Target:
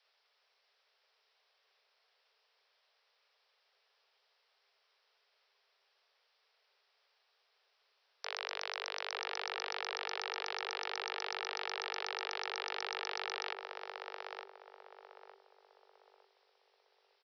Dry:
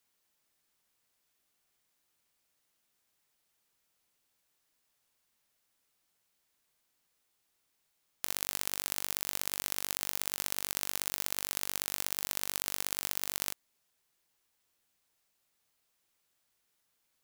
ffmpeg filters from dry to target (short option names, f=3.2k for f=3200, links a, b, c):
-filter_complex "[0:a]asplit=2[a][b];[b]adelay=906,lowpass=f=860:p=1,volume=-5dB,asplit=2[c][d];[d]adelay=906,lowpass=f=860:p=1,volume=0.38,asplit=2[e][f];[f]adelay=906,lowpass=f=860:p=1,volume=0.38,asplit=2[g][h];[h]adelay=906,lowpass=f=860:p=1,volume=0.38,asplit=2[i][j];[j]adelay=906,lowpass=f=860:p=1,volume=0.38[k];[a][c][e][g][i][k]amix=inputs=6:normalize=0,acrossover=split=3000[l][m];[m]acompressor=threshold=-48dB:ratio=4:attack=1:release=60[n];[l][n]amix=inputs=2:normalize=0,aresample=11025,aeval=exprs='(mod(18.8*val(0)+1,2)-1)/18.8':c=same,aresample=44100,afreqshift=390,volume=7.5dB"